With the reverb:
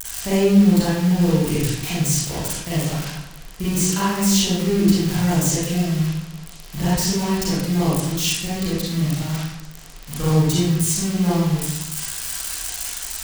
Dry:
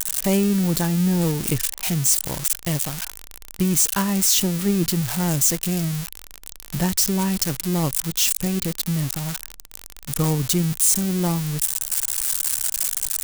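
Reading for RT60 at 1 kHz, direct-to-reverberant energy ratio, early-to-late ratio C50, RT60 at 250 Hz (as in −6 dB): 0.85 s, −10.0 dB, −2.5 dB, 1.0 s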